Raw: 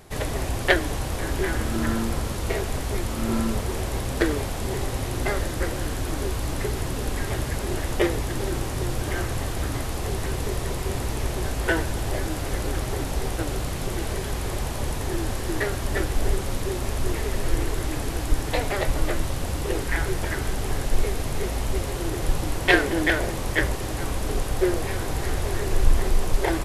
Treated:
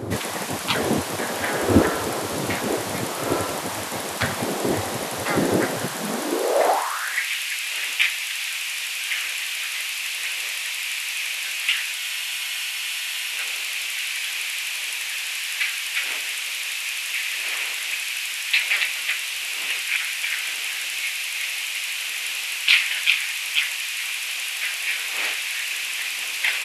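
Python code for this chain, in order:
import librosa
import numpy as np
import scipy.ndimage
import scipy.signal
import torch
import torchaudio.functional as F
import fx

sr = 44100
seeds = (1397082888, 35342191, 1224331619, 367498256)

y = fx.dmg_wind(x, sr, seeds[0], corner_hz=130.0, level_db=-18.0)
y = fx.spec_gate(y, sr, threshold_db=-15, keep='weak')
y = fx.filter_sweep_highpass(y, sr, from_hz=97.0, to_hz=2500.0, start_s=5.73, end_s=7.28, q=4.2)
y = fx.spec_freeze(y, sr, seeds[1], at_s=12.0, hold_s=1.31)
y = y * 10.0 ** (6.0 / 20.0)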